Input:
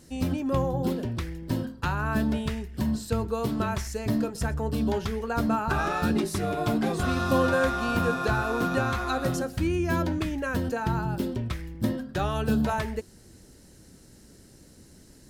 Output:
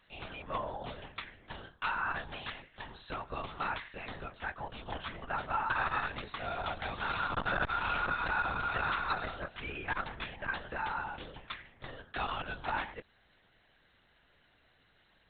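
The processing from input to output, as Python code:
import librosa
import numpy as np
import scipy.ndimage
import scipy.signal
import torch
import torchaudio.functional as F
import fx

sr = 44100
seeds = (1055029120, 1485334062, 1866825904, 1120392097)

y = scipy.signal.sosfilt(scipy.signal.butter(2, 970.0, 'highpass', fs=sr, output='sos'), x)
y = fx.lpc_vocoder(y, sr, seeds[0], excitation='whisper', order=10)
y = fx.transformer_sat(y, sr, knee_hz=240.0)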